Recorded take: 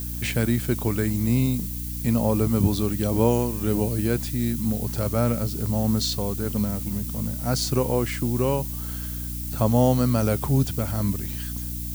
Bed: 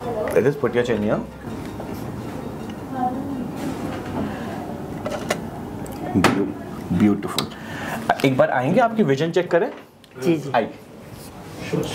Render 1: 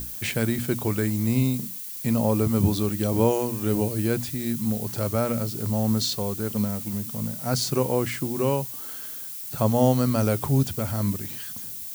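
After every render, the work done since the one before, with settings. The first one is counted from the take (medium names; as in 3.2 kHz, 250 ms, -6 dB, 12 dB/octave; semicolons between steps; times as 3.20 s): hum notches 60/120/180/240/300 Hz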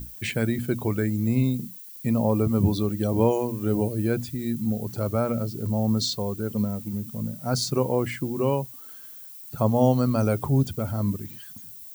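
noise reduction 11 dB, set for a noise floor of -36 dBFS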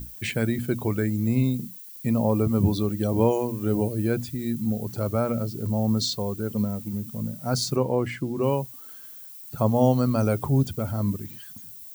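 7.75–8.42 s: treble shelf 6 kHz -> 9.5 kHz -11 dB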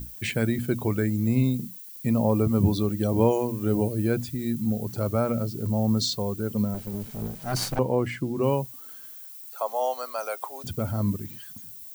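6.74–7.79 s: comb filter that takes the minimum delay 1.3 ms; 9.13–10.64 s: high-pass 610 Hz 24 dB/octave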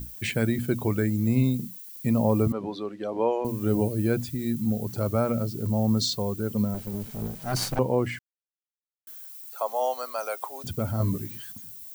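2.52–3.45 s: band-pass 440–2800 Hz; 8.19–9.07 s: mute; 10.98–11.52 s: doubling 17 ms -2.5 dB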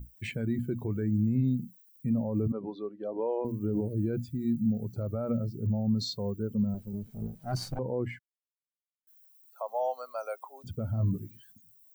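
peak limiter -18.5 dBFS, peak gain reduction 9 dB; spectral contrast expander 1.5:1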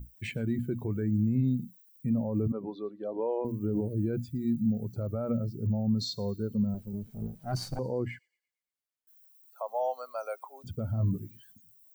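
feedback echo behind a high-pass 114 ms, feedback 44%, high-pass 4.4 kHz, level -19 dB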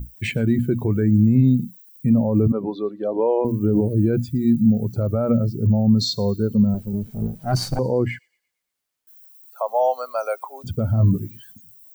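trim +11.5 dB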